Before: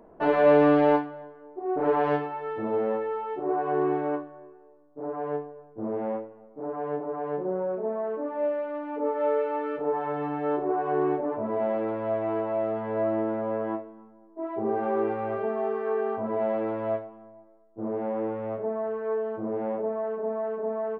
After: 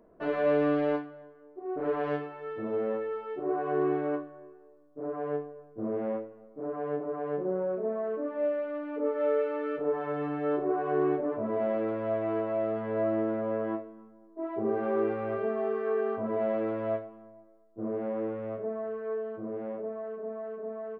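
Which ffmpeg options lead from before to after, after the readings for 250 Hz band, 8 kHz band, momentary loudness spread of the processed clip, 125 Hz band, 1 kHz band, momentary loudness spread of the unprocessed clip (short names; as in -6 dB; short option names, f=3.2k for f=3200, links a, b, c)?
-3.0 dB, n/a, 10 LU, -3.0 dB, -7.0 dB, 10 LU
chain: -af "equalizer=f=850:t=o:w=0.21:g=-14.5,dynaudnorm=f=430:g=13:m=5.5dB,volume=-6.5dB"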